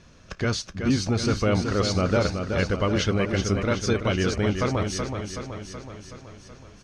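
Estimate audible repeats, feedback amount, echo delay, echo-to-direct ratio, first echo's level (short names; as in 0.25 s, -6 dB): 7, 59%, 0.375 s, -4.5 dB, -6.5 dB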